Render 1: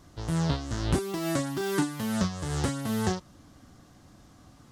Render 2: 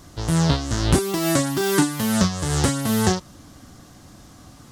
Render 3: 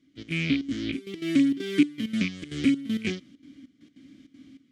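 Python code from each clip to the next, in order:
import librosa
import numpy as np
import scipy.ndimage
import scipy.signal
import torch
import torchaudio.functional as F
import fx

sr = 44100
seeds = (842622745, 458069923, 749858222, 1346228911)

y1 = fx.high_shelf(x, sr, hz=4600.0, db=6.0)
y1 = y1 * librosa.db_to_amplitude(8.0)
y2 = fx.rattle_buzz(y1, sr, strikes_db=-19.0, level_db=-14.0)
y2 = fx.vowel_filter(y2, sr, vowel='i')
y2 = fx.step_gate(y2, sr, bpm=197, pattern='..x.xxxx.xxx', floor_db=-12.0, edge_ms=4.5)
y2 = y2 * librosa.db_to_amplitude(6.0)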